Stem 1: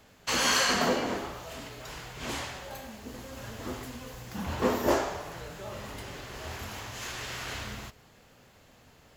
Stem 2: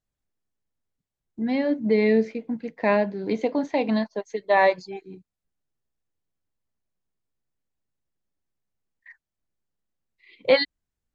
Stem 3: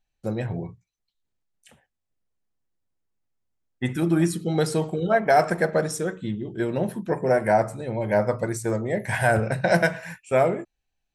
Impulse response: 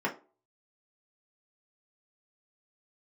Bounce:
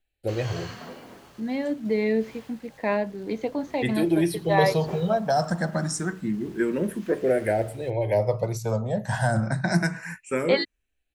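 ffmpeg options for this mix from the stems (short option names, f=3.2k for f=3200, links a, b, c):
-filter_complex "[0:a]lowpass=5.5k,equalizer=f=150:w=2.1:g=6.5,acrusher=bits=6:mix=0:aa=0.000001,volume=-15dB,asplit=2[a][b];[b]volume=-21dB[c];[1:a]agate=range=-16dB:threshold=-48dB:ratio=16:detection=peak,volume=-4dB[d];[2:a]acrossover=split=490|3000[e][f][g];[f]acompressor=threshold=-27dB:ratio=6[h];[e][h][g]amix=inputs=3:normalize=0,asplit=2[i][j];[j]afreqshift=0.27[k];[i][k]amix=inputs=2:normalize=1,volume=3dB[l];[c]aecho=0:1:782|1564|2346|3128|3910:1|0.39|0.152|0.0593|0.0231[m];[a][d][l][m]amix=inputs=4:normalize=0"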